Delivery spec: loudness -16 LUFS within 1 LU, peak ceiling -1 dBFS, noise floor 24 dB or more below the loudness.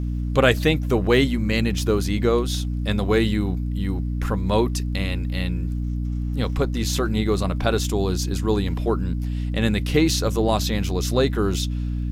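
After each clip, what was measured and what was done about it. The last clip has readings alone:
ticks 39/s; hum 60 Hz; harmonics up to 300 Hz; hum level -23 dBFS; loudness -22.5 LUFS; peak -4.5 dBFS; loudness target -16.0 LUFS
-> de-click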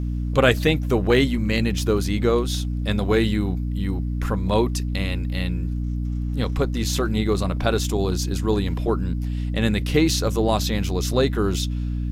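ticks 1.1/s; hum 60 Hz; harmonics up to 300 Hz; hum level -23 dBFS
-> notches 60/120/180/240/300 Hz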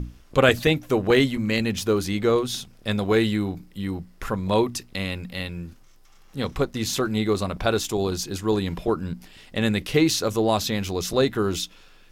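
hum none; loudness -24.0 LUFS; peak -5.0 dBFS; loudness target -16.0 LUFS
-> gain +8 dB; limiter -1 dBFS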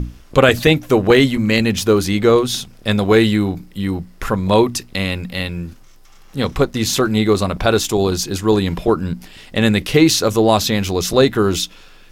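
loudness -16.5 LUFS; peak -1.0 dBFS; noise floor -44 dBFS

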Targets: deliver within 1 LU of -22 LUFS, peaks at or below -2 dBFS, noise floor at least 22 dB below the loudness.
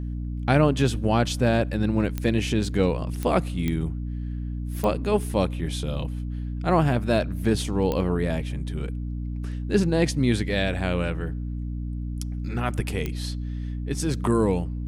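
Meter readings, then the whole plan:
clicks 6; hum 60 Hz; harmonics up to 300 Hz; hum level -28 dBFS; loudness -25.5 LUFS; peak -6.0 dBFS; loudness target -22.0 LUFS
-> de-click; de-hum 60 Hz, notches 5; gain +3.5 dB

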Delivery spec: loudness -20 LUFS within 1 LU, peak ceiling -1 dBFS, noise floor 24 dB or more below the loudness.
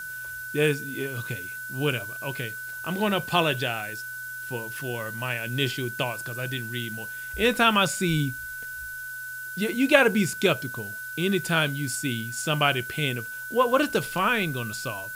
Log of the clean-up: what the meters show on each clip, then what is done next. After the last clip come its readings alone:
steady tone 1500 Hz; tone level -34 dBFS; noise floor -36 dBFS; noise floor target -51 dBFS; loudness -26.5 LUFS; peak -3.5 dBFS; loudness target -20.0 LUFS
-> notch 1500 Hz, Q 30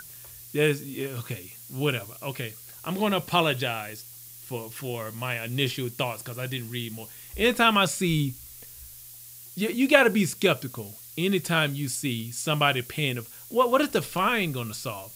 steady tone none; noise floor -46 dBFS; noise floor target -50 dBFS
-> denoiser 6 dB, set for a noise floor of -46 dBFS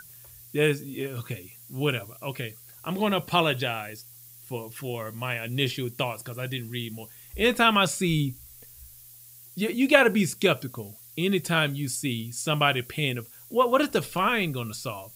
noise floor -49 dBFS; noise floor target -50 dBFS
-> denoiser 6 dB, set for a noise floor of -49 dBFS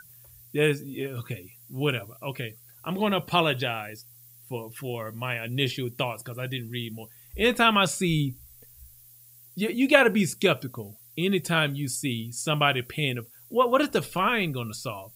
noise floor -53 dBFS; loudness -26.0 LUFS; peak -3.0 dBFS; loudness target -20.0 LUFS
-> gain +6 dB; limiter -1 dBFS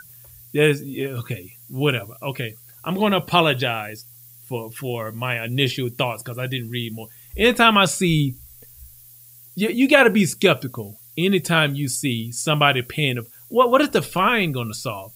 loudness -20.5 LUFS; peak -1.0 dBFS; noise floor -47 dBFS

